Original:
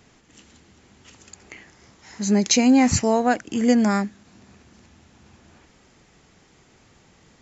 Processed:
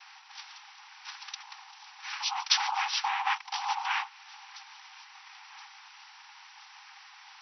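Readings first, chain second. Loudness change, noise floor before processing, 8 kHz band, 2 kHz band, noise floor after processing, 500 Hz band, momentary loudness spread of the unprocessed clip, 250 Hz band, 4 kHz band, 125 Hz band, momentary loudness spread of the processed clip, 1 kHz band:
-11.0 dB, -57 dBFS, n/a, -2.5 dB, -53 dBFS, under -40 dB, 9 LU, under -40 dB, 0.0 dB, under -40 dB, 22 LU, -4.0 dB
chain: spectral gain 1.42–1.97, 1400–4300 Hz -27 dB; dynamic EQ 3000 Hz, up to +6 dB, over -49 dBFS, Q 4.1; compressor 4:1, threshold -30 dBFS, peak gain reduction 15 dB; noise vocoder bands 4; brick-wall FIR band-pass 760–6000 Hz; on a send: thin delay 1.024 s, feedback 54%, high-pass 3300 Hz, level -19.5 dB; on the sum: gain +8.5 dB

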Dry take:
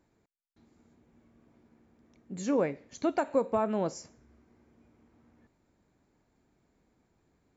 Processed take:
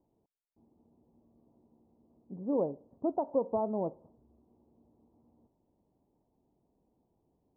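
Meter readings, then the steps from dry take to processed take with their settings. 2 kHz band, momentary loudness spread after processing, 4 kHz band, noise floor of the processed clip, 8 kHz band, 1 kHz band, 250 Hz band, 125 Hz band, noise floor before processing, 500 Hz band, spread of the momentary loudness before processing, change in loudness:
under -30 dB, 8 LU, under -30 dB, -78 dBFS, n/a, -4.0 dB, -3.0 dB, -4.0 dB, -73 dBFS, -2.5 dB, 10 LU, -3.0 dB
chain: steep low-pass 970 Hz 48 dB/oct; low shelf 150 Hz -4.5 dB; gain -2 dB

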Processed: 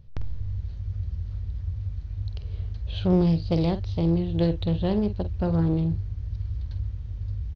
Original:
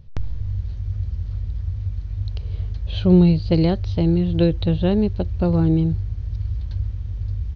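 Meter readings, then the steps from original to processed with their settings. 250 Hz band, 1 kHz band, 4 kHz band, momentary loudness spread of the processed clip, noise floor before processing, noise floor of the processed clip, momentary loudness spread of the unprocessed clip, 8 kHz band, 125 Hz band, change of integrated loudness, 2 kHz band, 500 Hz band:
-6.0 dB, -2.5 dB, -5.5 dB, 11 LU, -30 dBFS, -36 dBFS, 12 LU, n/a, -5.5 dB, -6.0 dB, -6.0 dB, -5.5 dB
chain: in parallel at -10.5 dB: hard clip -17 dBFS, distortion -9 dB; on the sum: doubler 48 ms -11 dB; Doppler distortion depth 0.3 ms; gain -7.5 dB

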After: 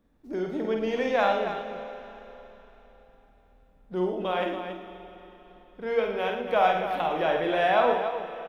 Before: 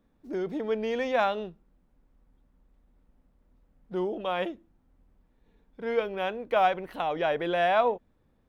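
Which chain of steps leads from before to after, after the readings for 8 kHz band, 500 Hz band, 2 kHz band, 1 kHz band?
n/a, +2.5 dB, +2.5 dB, +2.5 dB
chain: loudspeakers at several distances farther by 17 m -5 dB, 39 m -9 dB, 96 m -9 dB; Schroeder reverb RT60 3.8 s, combs from 29 ms, DRR 9 dB

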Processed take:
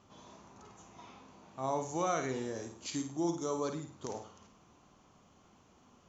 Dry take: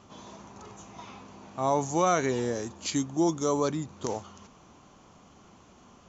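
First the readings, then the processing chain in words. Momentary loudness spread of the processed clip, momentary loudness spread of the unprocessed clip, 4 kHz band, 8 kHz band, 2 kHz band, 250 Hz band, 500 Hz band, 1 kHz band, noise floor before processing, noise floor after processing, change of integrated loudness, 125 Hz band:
22 LU, 22 LU, -8.0 dB, n/a, -8.0 dB, -8.0 dB, -8.0 dB, -8.0 dB, -56 dBFS, -64 dBFS, -8.0 dB, -9.0 dB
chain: flutter echo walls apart 9.1 m, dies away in 0.43 s; gain -9 dB

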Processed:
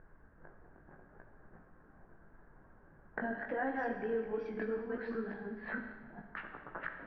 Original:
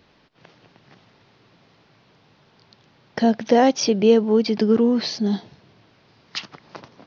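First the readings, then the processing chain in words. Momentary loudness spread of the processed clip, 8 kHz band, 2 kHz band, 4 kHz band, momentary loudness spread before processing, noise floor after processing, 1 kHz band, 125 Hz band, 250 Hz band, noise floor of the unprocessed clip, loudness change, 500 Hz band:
11 LU, n/a, -5.5 dB, under -35 dB, 16 LU, -62 dBFS, -16.0 dB, -20.0 dB, -22.0 dB, -58 dBFS, -20.0 dB, -18.5 dB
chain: reverse delay 0.413 s, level -1 dB; HPF 130 Hz 24 dB/oct; notches 60/120/180/240 Hz; reverb removal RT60 0.94 s; low-pass opened by the level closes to 840 Hz, open at -14.5 dBFS; compressor 3:1, threshold -34 dBFS, peak gain reduction 19 dB; chorus 0.75 Hz, delay 16.5 ms, depth 4.1 ms; added noise brown -57 dBFS; ladder low-pass 1700 Hz, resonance 80%; Schroeder reverb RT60 1.7 s, combs from 29 ms, DRR 5 dB; mismatched tape noise reduction decoder only; gain +8.5 dB

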